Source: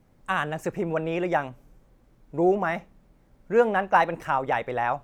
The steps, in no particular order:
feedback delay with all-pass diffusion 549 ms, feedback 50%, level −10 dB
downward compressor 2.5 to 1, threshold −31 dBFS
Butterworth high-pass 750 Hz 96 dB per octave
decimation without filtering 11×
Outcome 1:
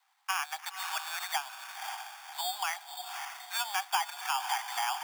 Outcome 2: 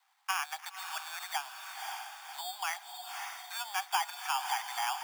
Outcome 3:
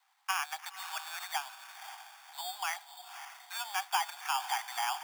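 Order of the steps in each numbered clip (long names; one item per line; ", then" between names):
feedback delay with all-pass diffusion, then decimation without filtering, then Butterworth high-pass, then downward compressor
decimation without filtering, then feedback delay with all-pass diffusion, then downward compressor, then Butterworth high-pass
downward compressor, then feedback delay with all-pass diffusion, then decimation without filtering, then Butterworth high-pass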